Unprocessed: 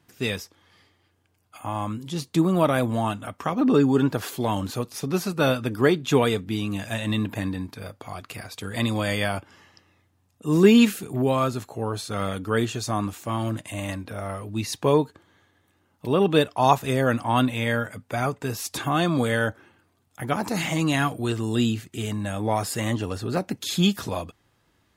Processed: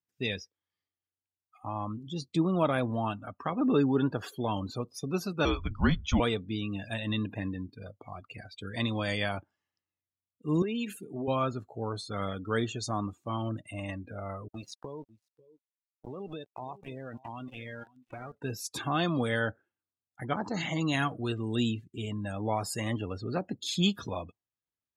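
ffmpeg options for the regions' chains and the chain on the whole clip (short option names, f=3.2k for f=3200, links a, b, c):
-filter_complex "[0:a]asettb=1/sr,asplit=3[a][b][c];[a]atrim=end=5.454[d];[b]atrim=start=5.45:end=6.2,asetpts=PTS-STARTPTS,afade=t=in:d=0.004:c=qsin,afade=t=out:st=0.746:d=0.004:c=qsin,lowpass=f=6.4k:t=q:w=2.3,aemphasis=mode=reproduction:type=50fm,afreqshift=-200[e];[c]atrim=start=6.196[f];[d][e]acrossfade=d=0.004:c1=hsin:c2=qsin[g];[g][f]acrossfade=d=0.004:c1=qsin:c2=hsin,asettb=1/sr,asplit=3[h][i][j];[h]atrim=end=10.624[k];[i]atrim=start=10.62:end=11.28,asetpts=PTS-STARTPTS,afade=t=in:d=0.004:c=qsin,afade=t=out:st=0.656:d=0.004:c=qsin,acompressor=threshold=-21dB:ratio=16:attack=3.2:release=140:knee=1:detection=peak,highpass=190[l];[j]atrim=start=11.276[m];[k][l]acrossfade=d=0.004:c1=hsin:c2=qsin[n];[n][m]acrossfade=d=0.004:c1=qsin:c2=hsin,asettb=1/sr,asplit=3[o][p][q];[o]atrim=end=14.484[r];[p]atrim=start=14.48:end=18.35,asetpts=PTS-STARTPTS,afade=t=in:d=0.004:c=qsin,afade=t=out:st=3.866:d=0.004:c=qsin,aeval=exprs='val(0)*gte(abs(val(0)),0.0422)':c=same,acompressor=threshold=-29dB:ratio=16:attack=3.2:release=140:knee=1:detection=peak,aecho=1:1:545:0.188,atrim=end_sample=170667[s];[q]atrim=start=18.346[t];[r][s]acrossfade=d=0.004:c1=hsin:c2=qsin[u];[u][t]acrossfade=d=0.004:c1=qsin:c2=hsin,asettb=1/sr,asplit=3[v][w][x];[v]atrim=end=20.274[y];[w]atrim=start=20.27:end=20.92,asetpts=PTS-STARTPTS,afade=t=in:d=0.004:c=qsin,afade=t=out:st=0.646:d=0.004:c=qsin,lowpass=7.5k,bandreject=f=2.5k:w=8.3[z];[x]atrim=start=20.916[aa];[y][z]acrossfade=d=0.004:c1=hsin:c2=qsin[ab];[ab][aa]acrossfade=d=0.004:c1=qsin:c2=hsin,afftdn=nr=29:nf=-36,equalizer=f=4.9k:t=o:w=2.4:g=3.5,volume=-6.5dB"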